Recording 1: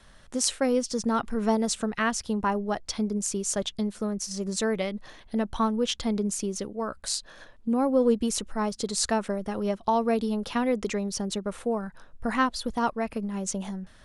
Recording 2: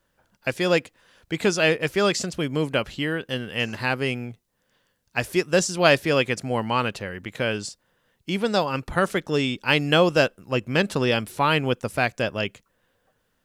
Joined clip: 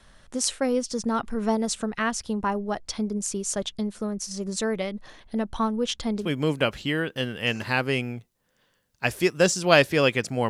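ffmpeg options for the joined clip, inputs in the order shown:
ffmpeg -i cue0.wav -i cue1.wav -filter_complex "[0:a]apad=whole_dur=10.49,atrim=end=10.49,atrim=end=6.31,asetpts=PTS-STARTPTS[link_01];[1:a]atrim=start=2.28:end=6.62,asetpts=PTS-STARTPTS[link_02];[link_01][link_02]acrossfade=duration=0.16:curve1=tri:curve2=tri" out.wav

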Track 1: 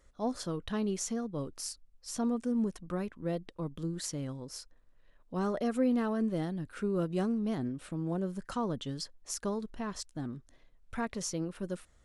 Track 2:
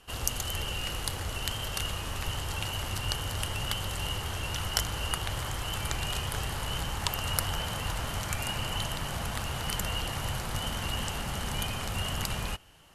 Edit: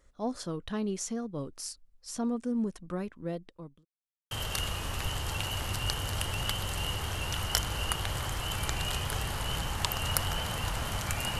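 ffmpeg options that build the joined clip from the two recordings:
ffmpeg -i cue0.wav -i cue1.wav -filter_complex "[0:a]apad=whole_dur=11.39,atrim=end=11.39,asplit=2[link_01][link_02];[link_01]atrim=end=3.85,asetpts=PTS-STARTPTS,afade=type=out:start_time=2.98:duration=0.87:curve=qsin[link_03];[link_02]atrim=start=3.85:end=4.31,asetpts=PTS-STARTPTS,volume=0[link_04];[1:a]atrim=start=1.53:end=8.61,asetpts=PTS-STARTPTS,afade=type=in:duration=0.004:curve=hsin[link_05];[link_03][link_04][link_05]concat=n=3:v=0:a=1" out.wav

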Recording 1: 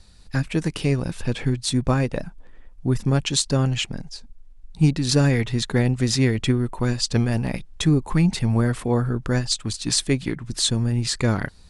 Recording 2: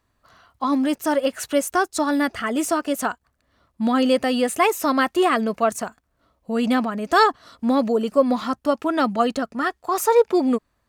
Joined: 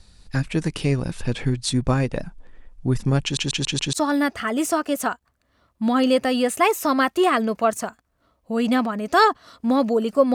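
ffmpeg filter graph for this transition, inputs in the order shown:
ffmpeg -i cue0.wav -i cue1.wav -filter_complex "[0:a]apad=whole_dur=10.34,atrim=end=10.34,asplit=5[link_01][link_02][link_03][link_04][link_05];[link_01]atrim=end=3.372[link_06];[link_02]atrim=start=3.228:end=3.372[link_07];[link_03]atrim=start=3.228:end=3.372[link_08];[link_04]atrim=start=3.228:end=3.372[link_09];[link_05]atrim=start=3.228:end=3.372[link_10];[1:a]atrim=start=1.918:end=8.33[link_11];[link_06][link_07]acrossfade=duration=0.004:curve1=hsin:curve2=hsin[link_12];[link_12][link_08]acrossfade=duration=0.004:curve1=hsin:curve2=hsin[link_13];[link_13][link_09]acrossfade=duration=0.004:curve1=hsin:curve2=hsin[link_14];[link_14][link_10]acrossfade=duration=0.004:curve1=hsin:curve2=hsin[link_15];[link_15][link_11]acrossfade=duration=0.004:curve1=hsin:curve2=hsin" out.wav

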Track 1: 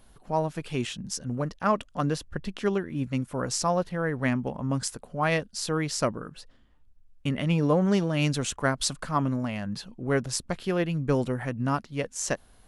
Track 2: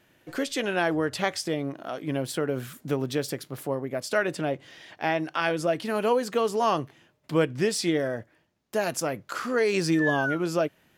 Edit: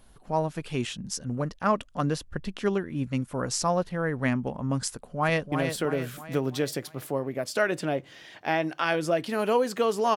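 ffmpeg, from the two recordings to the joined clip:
ffmpeg -i cue0.wav -i cue1.wav -filter_complex "[0:a]apad=whole_dur=10.16,atrim=end=10.16,atrim=end=5.522[link_01];[1:a]atrim=start=2.078:end=6.72[link_02];[link_01][link_02]acrossfade=duration=0.004:curve1=hsin:curve2=hsin,asplit=2[link_03][link_04];[link_04]afade=type=in:start_time=4.91:duration=0.01,afade=type=out:start_time=5.52:duration=0.01,aecho=0:1:330|660|990|1320|1650|1980:0.473151|0.236576|0.118288|0.0591439|0.029572|0.014786[link_05];[link_03][link_05]amix=inputs=2:normalize=0" out.wav

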